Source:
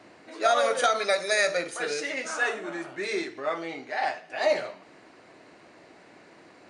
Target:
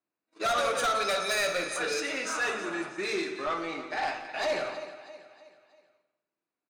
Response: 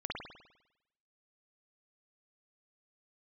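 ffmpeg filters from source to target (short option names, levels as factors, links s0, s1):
-filter_complex "[0:a]agate=range=0.01:threshold=0.0112:ratio=16:detection=peak,lowshelf=f=100:g=-10,bandreject=f=2100:w=23,aecho=1:1:0.8:0.32,bandreject=f=128:t=h:w=4,bandreject=f=256:t=h:w=4,bandreject=f=384:t=h:w=4,bandreject=f=512:t=h:w=4,bandreject=f=640:t=h:w=4,bandreject=f=768:t=h:w=4,bandreject=f=896:t=h:w=4,bandreject=f=1024:t=h:w=4,bandreject=f=1152:t=h:w=4,bandreject=f=1280:t=h:w=4,bandreject=f=1408:t=h:w=4,bandreject=f=1536:t=h:w=4,bandreject=f=1664:t=h:w=4,bandreject=f=1792:t=h:w=4,bandreject=f=1920:t=h:w=4,bandreject=f=2048:t=h:w=4,bandreject=f=2176:t=h:w=4,bandreject=f=2304:t=h:w=4,bandreject=f=2432:t=h:w=4,bandreject=f=2560:t=h:w=4,bandreject=f=2688:t=h:w=4,bandreject=f=2816:t=h:w=4,bandreject=f=2944:t=h:w=4,bandreject=f=3072:t=h:w=4,bandreject=f=3200:t=h:w=4,bandreject=f=3328:t=h:w=4,bandreject=f=3456:t=h:w=4,bandreject=f=3584:t=h:w=4,bandreject=f=3712:t=h:w=4,bandreject=f=3840:t=h:w=4,bandreject=f=3968:t=h:w=4,bandreject=f=4096:t=h:w=4,asplit=2[s0][s1];[s1]aecho=0:1:319|638|957|1276:0.158|0.0697|0.0307|0.0135[s2];[s0][s2]amix=inputs=2:normalize=0,asoftclip=type=tanh:threshold=0.0562,aecho=1:1:172:0.211,asplit=2[s3][s4];[1:a]atrim=start_sample=2205[s5];[s4][s5]afir=irnorm=-1:irlink=0,volume=0.282[s6];[s3][s6]amix=inputs=2:normalize=0"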